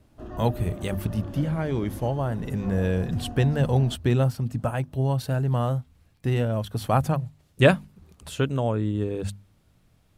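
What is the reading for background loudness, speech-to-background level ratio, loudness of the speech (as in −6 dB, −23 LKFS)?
−38.5 LKFS, 12.5 dB, −26.0 LKFS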